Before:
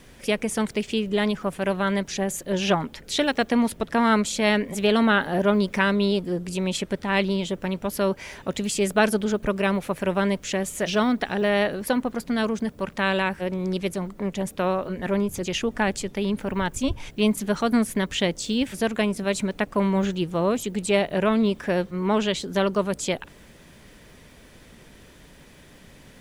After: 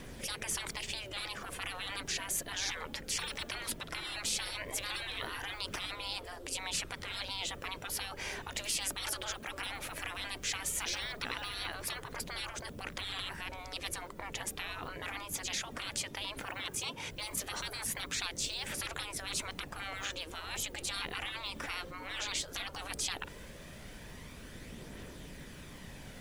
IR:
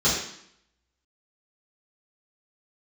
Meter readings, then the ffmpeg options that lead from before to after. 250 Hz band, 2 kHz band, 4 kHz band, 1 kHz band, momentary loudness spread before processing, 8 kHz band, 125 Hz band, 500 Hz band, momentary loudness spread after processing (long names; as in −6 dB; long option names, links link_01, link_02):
−27.0 dB, −10.5 dB, −5.0 dB, −15.0 dB, 7 LU, −2.5 dB, −18.0 dB, −24.0 dB, 12 LU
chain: -af "aphaser=in_gain=1:out_gain=1:delay=3.8:decay=0.29:speed=0.16:type=triangular,afftfilt=real='re*lt(hypot(re,im),0.0631)':imag='im*lt(hypot(re,im),0.0631)':win_size=1024:overlap=0.75"